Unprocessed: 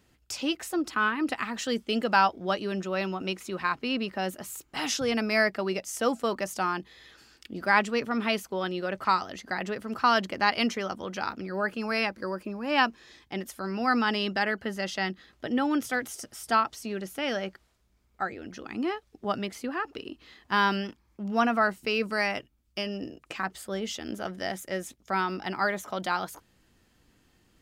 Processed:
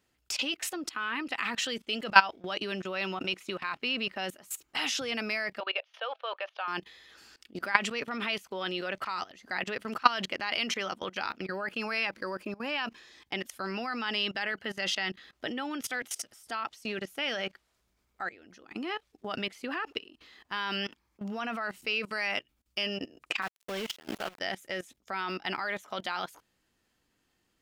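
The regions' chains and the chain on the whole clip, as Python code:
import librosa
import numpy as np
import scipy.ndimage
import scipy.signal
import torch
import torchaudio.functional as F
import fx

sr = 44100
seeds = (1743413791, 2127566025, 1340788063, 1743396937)

y = fx.chain(x, sr, fx.ellip_bandpass(low_hz=530.0, high_hz=3500.0, order=3, stop_db=40),
    fx.notch(hz=2000.0, q=8.6), at=(5.6, 6.68))
y = fx.chain(y, sr, fx.high_shelf(hz=2700.0, db=-5.0),
    fx.sample_gate(floor_db=-37.0), at=(23.42, 24.4))
y = fx.low_shelf(y, sr, hz=270.0, db=-8.5)
y = fx.level_steps(y, sr, step_db=20)
y = fx.dynamic_eq(y, sr, hz=2800.0, q=1.0, threshold_db=-57.0, ratio=4.0, max_db=8)
y = y * librosa.db_to_amplitude(4.5)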